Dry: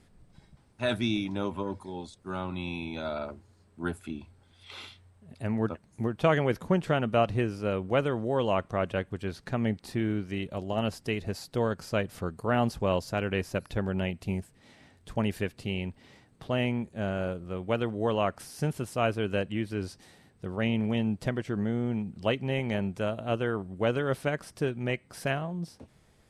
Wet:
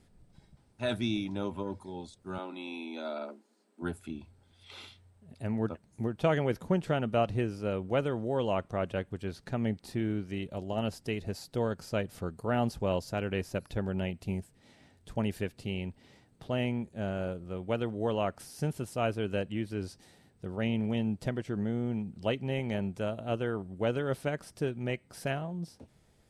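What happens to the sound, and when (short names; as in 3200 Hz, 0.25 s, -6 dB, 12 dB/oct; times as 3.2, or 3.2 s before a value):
2.38–3.82 steep high-pass 210 Hz 72 dB/oct
whole clip: bell 1800 Hz -3 dB 1.6 oct; notch 1100 Hz, Q 14; gain -2.5 dB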